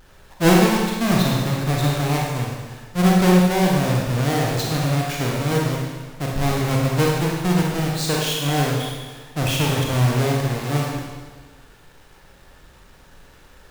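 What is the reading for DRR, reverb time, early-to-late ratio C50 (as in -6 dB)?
-2.5 dB, 1.4 s, -0.5 dB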